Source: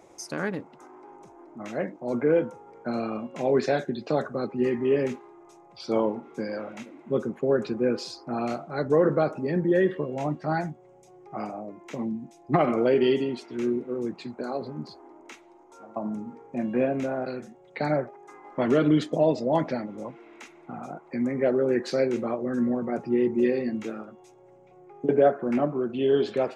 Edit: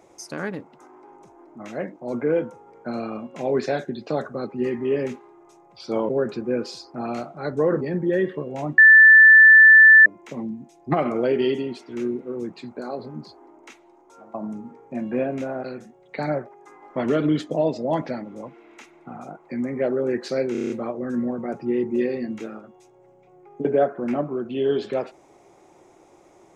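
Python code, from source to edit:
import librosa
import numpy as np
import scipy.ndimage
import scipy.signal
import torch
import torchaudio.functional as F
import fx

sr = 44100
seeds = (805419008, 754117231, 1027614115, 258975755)

y = fx.edit(x, sr, fx.cut(start_s=6.09, length_s=1.33),
    fx.cut(start_s=9.14, length_s=0.29),
    fx.bleep(start_s=10.4, length_s=1.28, hz=1760.0, db=-6.5),
    fx.stutter(start_s=22.14, slice_s=0.03, count=7), tone=tone)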